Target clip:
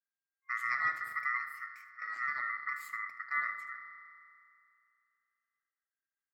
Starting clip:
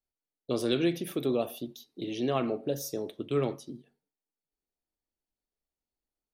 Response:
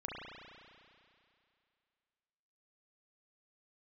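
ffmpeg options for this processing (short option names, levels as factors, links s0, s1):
-filter_complex "[0:a]asplit=2[s0][s1];[1:a]atrim=start_sample=2205,adelay=77[s2];[s1][s2]afir=irnorm=-1:irlink=0,volume=0.316[s3];[s0][s3]amix=inputs=2:normalize=0,afftfilt=real='re*(1-between(b*sr/4096,510,1700))':imag='im*(1-between(b*sr/4096,510,1700))':win_size=4096:overlap=0.75,aeval=exprs='val(0)*sin(2*PI*1600*n/s)':c=same,highshelf=f=2800:t=q:w=3:g=-6.5,volume=0.501"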